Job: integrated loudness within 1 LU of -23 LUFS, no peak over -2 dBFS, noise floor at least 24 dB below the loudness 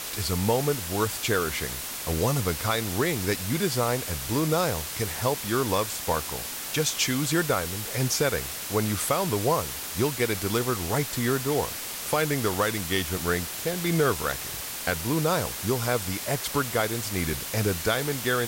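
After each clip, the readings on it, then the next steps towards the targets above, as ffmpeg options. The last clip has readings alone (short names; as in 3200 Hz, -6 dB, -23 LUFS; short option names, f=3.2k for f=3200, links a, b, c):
noise floor -35 dBFS; noise floor target -51 dBFS; loudness -26.5 LUFS; peak -12.0 dBFS; loudness target -23.0 LUFS
-> -af "afftdn=nr=16:nf=-35"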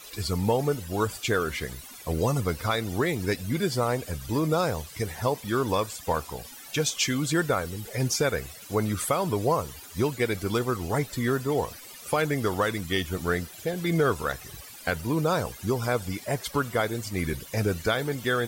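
noise floor -45 dBFS; noise floor target -52 dBFS
-> -af "afftdn=nr=7:nf=-45"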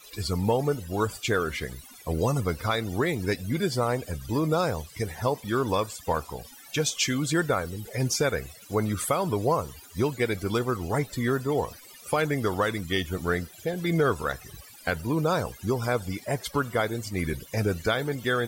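noise floor -49 dBFS; noise floor target -52 dBFS
-> -af "afftdn=nr=6:nf=-49"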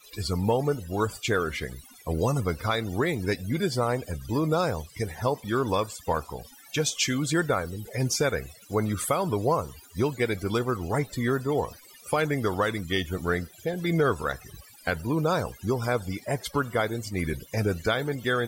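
noise floor -52 dBFS; loudness -28.0 LUFS; peak -13.0 dBFS; loudness target -23.0 LUFS
-> -af "volume=5dB"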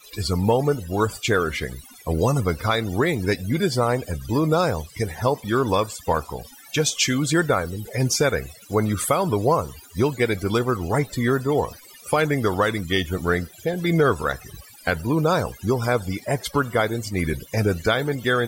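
loudness -23.0 LUFS; peak -8.0 dBFS; noise floor -47 dBFS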